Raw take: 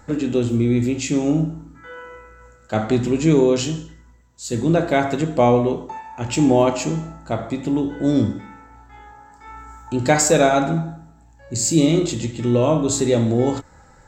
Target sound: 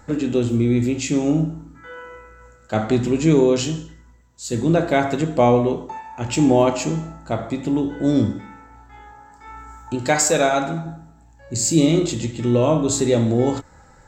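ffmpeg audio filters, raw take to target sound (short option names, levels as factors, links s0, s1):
-filter_complex "[0:a]asettb=1/sr,asplit=3[s0][s1][s2];[s0]atrim=end=9.954[s3];[s1]atrim=start=9.95:end=10.86,asetpts=PTS-STARTPTS,afade=t=in:d=0.004:c=qsin,afade=t=out:st=0.906:d=0.004:c=qsin,lowshelf=f=460:g=-6.5[s4];[s2]atrim=start=10.856[s5];[s3][s4]acrossfade=d=0.004:c1=hsin:c2=qsin[s6];[s6][s5]acrossfade=d=0.004:c1=qsin:c2=hsin"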